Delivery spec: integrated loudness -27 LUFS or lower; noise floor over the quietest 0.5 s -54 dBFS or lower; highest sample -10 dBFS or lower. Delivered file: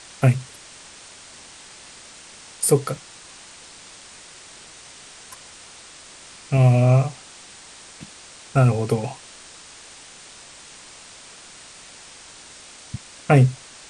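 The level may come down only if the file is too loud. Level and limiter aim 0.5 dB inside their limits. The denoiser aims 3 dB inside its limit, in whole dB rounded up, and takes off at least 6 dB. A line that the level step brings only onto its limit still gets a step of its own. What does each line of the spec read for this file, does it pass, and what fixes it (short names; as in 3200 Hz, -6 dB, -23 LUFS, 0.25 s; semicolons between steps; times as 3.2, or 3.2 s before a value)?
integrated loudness -20.0 LUFS: fail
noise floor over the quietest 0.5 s -44 dBFS: fail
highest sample -4.5 dBFS: fail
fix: denoiser 6 dB, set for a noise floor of -44 dBFS; gain -7.5 dB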